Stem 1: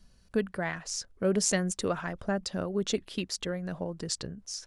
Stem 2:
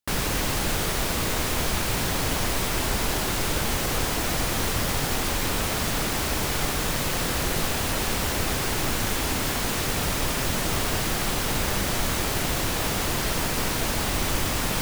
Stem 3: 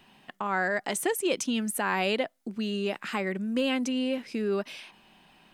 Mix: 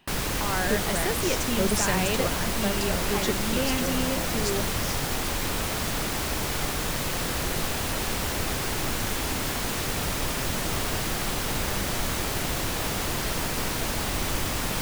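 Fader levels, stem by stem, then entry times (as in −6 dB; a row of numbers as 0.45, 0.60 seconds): −0.5, −2.5, −2.0 decibels; 0.35, 0.00, 0.00 seconds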